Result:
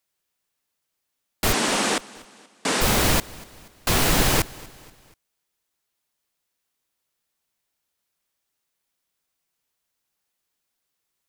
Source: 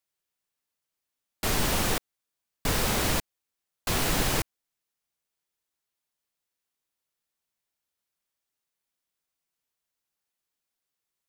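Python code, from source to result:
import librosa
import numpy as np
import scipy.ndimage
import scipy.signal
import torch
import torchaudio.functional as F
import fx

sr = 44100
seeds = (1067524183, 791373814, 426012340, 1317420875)

p1 = fx.cheby1_bandpass(x, sr, low_hz=220.0, high_hz=8900.0, order=3, at=(1.52, 2.8), fade=0.02)
p2 = p1 + fx.echo_feedback(p1, sr, ms=240, feedback_pct=48, wet_db=-22, dry=0)
y = F.gain(torch.from_numpy(p2), 6.5).numpy()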